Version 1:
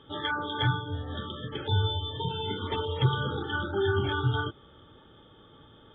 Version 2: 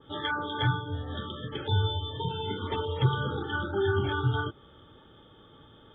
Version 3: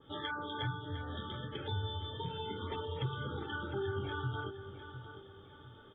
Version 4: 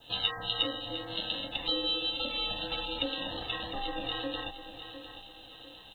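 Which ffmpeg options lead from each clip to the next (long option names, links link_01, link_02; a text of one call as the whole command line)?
ffmpeg -i in.wav -af "adynamicequalizer=threshold=0.00708:dfrequency=2300:dqfactor=0.7:tfrequency=2300:tqfactor=0.7:attack=5:release=100:ratio=0.375:range=2:mode=cutabove:tftype=highshelf" out.wav
ffmpeg -i in.wav -filter_complex "[0:a]acompressor=threshold=-33dB:ratio=2,asplit=2[link_01][link_02];[link_02]aecho=0:1:705|1410|2115|2820:0.282|0.107|0.0407|0.0155[link_03];[link_01][link_03]amix=inputs=2:normalize=0,volume=-5dB" out.wav
ffmpeg -i in.wav -af "aexciter=amount=8.9:drive=3.4:freq=2900,aeval=exprs='val(0)*sin(2*PI*410*n/s)':channel_layout=same,volume=3dB" out.wav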